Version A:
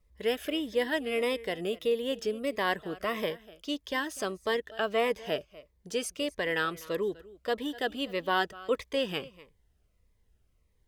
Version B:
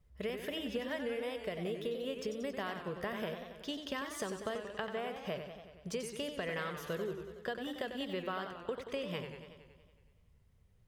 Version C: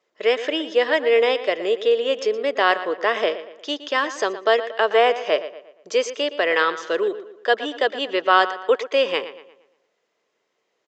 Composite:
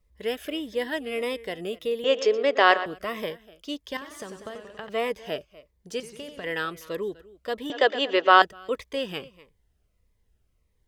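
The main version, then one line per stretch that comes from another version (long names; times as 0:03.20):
A
0:02.04–0:02.86: punch in from C
0:03.97–0:04.89: punch in from B
0:06.00–0:06.44: punch in from B
0:07.70–0:08.42: punch in from C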